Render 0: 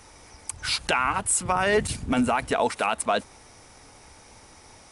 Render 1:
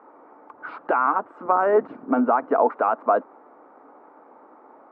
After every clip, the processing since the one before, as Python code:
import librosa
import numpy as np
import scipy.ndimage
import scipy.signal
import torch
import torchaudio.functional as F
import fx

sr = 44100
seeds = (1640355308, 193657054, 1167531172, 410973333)

y = scipy.signal.sosfilt(scipy.signal.ellip(3, 1.0, 80, [270.0, 1300.0], 'bandpass', fs=sr, output='sos'), x)
y = y * librosa.db_to_amplitude(5.5)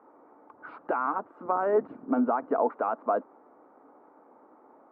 y = fx.tilt_eq(x, sr, slope=-2.0)
y = y * librosa.db_to_amplitude(-8.0)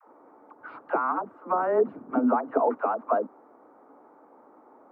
y = fx.dispersion(x, sr, late='lows', ms=76.0, hz=440.0)
y = y * librosa.db_to_amplitude(2.0)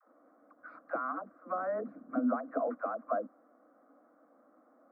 y = fx.fixed_phaser(x, sr, hz=600.0, stages=8)
y = y * librosa.db_to_amplitude(-6.5)